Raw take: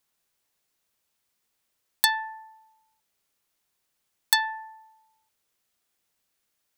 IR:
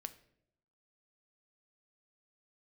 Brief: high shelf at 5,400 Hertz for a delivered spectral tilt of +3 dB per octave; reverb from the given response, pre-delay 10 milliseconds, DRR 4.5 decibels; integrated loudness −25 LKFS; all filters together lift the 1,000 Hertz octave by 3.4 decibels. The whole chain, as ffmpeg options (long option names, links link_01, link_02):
-filter_complex "[0:a]equalizer=frequency=1000:width_type=o:gain=4,highshelf=frequency=5400:gain=-4.5,asplit=2[link_01][link_02];[1:a]atrim=start_sample=2205,adelay=10[link_03];[link_02][link_03]afir=irnorm=-1:irlink=0,volume=-0.5dB[link_04];[link_01][link_04]amix=inputs=2:normalize=0"